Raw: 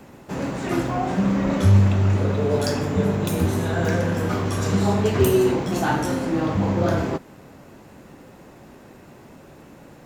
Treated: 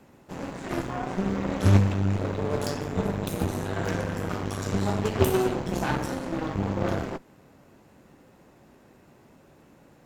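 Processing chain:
0:05.56–0:06.06: low-shelf EQ 95 Hz +12 dB
harmonic generator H 3 −13 dB, 8 −25 dB, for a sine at −5 dBFS

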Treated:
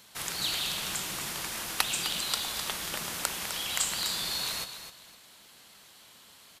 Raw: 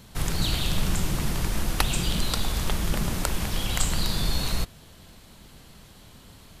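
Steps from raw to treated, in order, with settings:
high-pass filter 1,300 Hz 6 dB per octave
repeating echo 256 ms, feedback 25%, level −10 dB

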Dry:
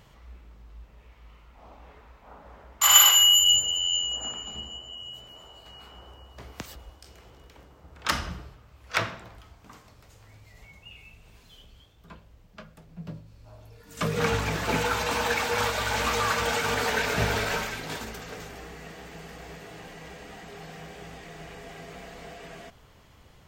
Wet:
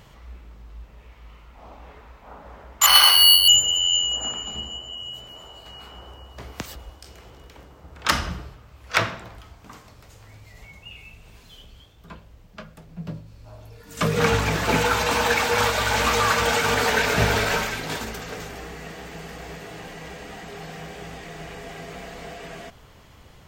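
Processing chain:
0:02.86–0:03.48: bad sample-rate conversion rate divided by 6×, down filtered, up hold
level +5.5 dB

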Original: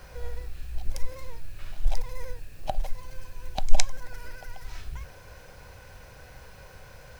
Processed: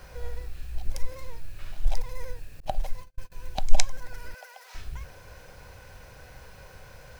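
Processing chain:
0:02.60–0:03.32: noise gate −30 dBFS, range −43 dB
0:04.34–0:04.75: Butterworth high-pass 470 Hz 48 dB per octave

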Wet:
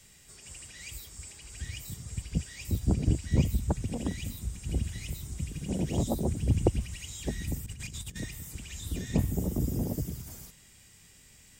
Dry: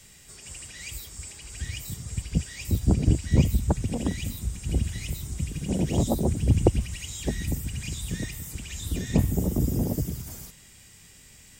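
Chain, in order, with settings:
0:07.66–0:08.20: compressor whose output falls as the input rises −35 dBFS, ratio −0.5
level −5 dB

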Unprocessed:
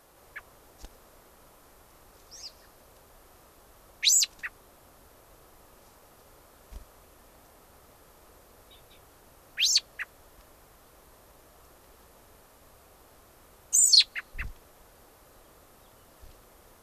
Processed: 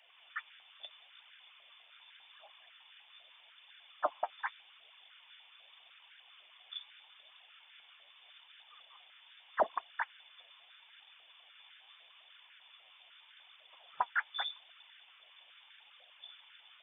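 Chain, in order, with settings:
voice inversion scrambler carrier 3,500 Hz
flanger 0.81 Hz, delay 1 ms, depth 9.8 ms, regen +38%
high-pass on a step sequencer 10 Hz 640–1,500 Hz
level −1.5 dB

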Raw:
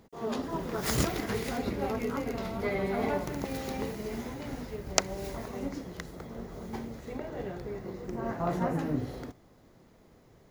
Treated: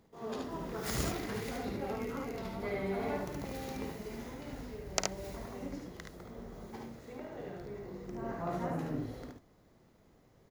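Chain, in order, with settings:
0:06.66–0:07.60: low-shelf EQ 69 Hz −11.5 dB
ambience of single reflections 53 ms −8.5 dB, 73 ms −3.5 dB
level −7.5 dB

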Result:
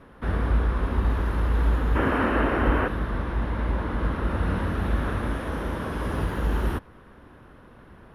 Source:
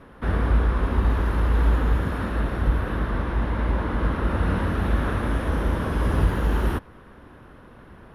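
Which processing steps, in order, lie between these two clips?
0:01.96–0:02.87: gain on a spectral selection 230–3,200 Hz +10 dB
0:05.33–0:06.38: low-shelf EQ 120 Hz −7 dB
level −2.5 dB

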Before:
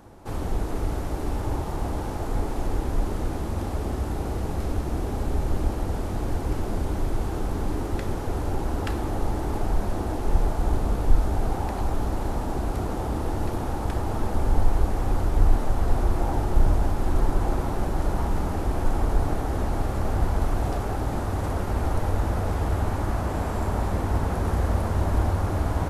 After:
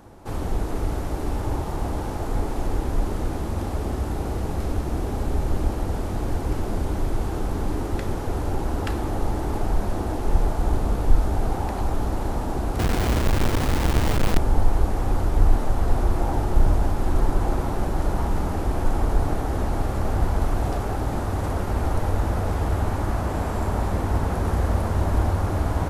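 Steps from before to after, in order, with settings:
0:12.79–0:14.38: each half-wave held at its own peak
level +1.5 dB

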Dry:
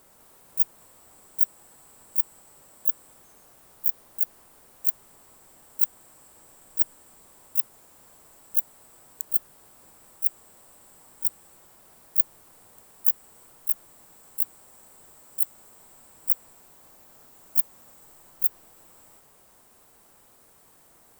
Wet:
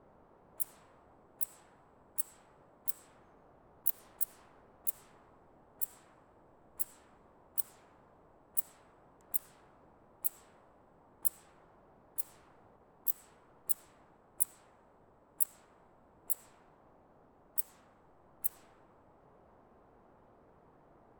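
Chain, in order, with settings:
output level in coarse steps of 12 dB
low-pass that shuts in the quiet parts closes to 890 Hz, open at −26.5 dBFS
level +5 dB

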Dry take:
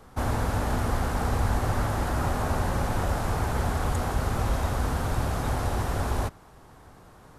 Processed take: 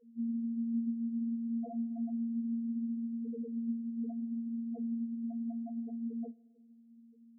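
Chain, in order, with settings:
channel vocoder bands 8, saw 231 Hz
spectral peaks only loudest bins 1
coupled-rooms reverb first 0.21 s, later 1.6 s, from −19 dB, DRR 11.5 dB

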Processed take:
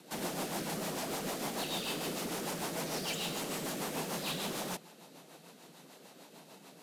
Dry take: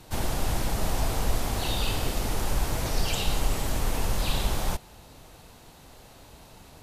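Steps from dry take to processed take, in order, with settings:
elliptic high-pass filter 160 Hz
hard clipping −31 dBFS, distortion −12 dB
rotating-speaker cabinet horn 6.7 Hz

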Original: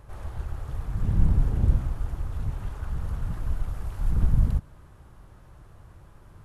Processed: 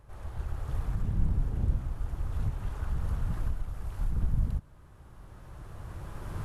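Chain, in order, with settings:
camcorder AGC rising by 11 dB per second
level −7 dB

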